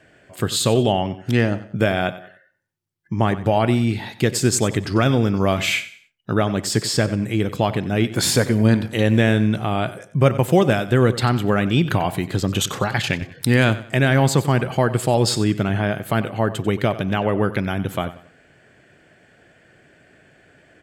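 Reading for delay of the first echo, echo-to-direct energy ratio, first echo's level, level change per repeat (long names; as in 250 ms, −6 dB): 93 ms, −15.0 dB, −15.5 dB, −9.5 dB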